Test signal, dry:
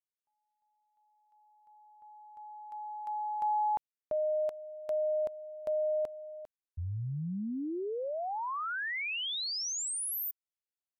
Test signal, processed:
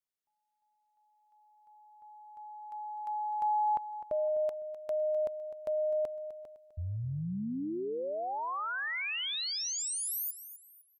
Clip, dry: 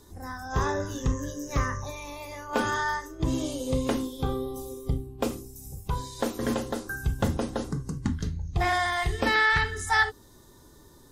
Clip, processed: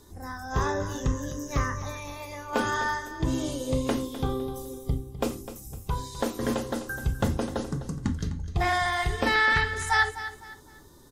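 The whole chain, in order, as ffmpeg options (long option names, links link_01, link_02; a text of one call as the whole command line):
ffmpeg -i in.wav -af "aecho=1:1:254|508|762:0.224|0.0716|0.0229" out.wav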